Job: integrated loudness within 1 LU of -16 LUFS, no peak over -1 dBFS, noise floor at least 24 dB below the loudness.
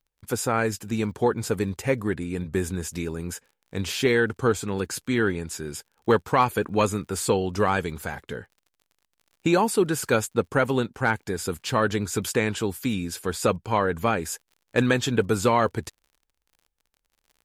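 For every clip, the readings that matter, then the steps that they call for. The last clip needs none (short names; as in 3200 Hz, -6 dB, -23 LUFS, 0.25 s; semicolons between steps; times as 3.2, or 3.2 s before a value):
ticks 46/s; loudness -25.5 LUFS; peak -8.5 dBFS; loudness target -16.0 LUFS
-> de-click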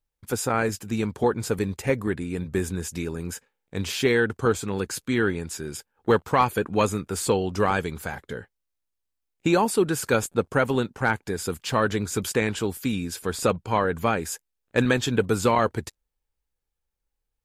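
ticks 0.11/s; loudness -25.5 LUFS; peak -8.5 dBFS; loudness target -16.0 LUFS
-> gain +9.5 dB; limiter -1 dBFS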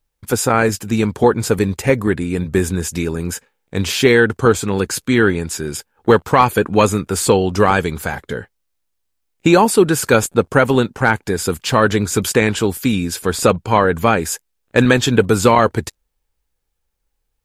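loudness -16.0 LUFS; peak -1.0 dBFS; noise floor -72 dBFS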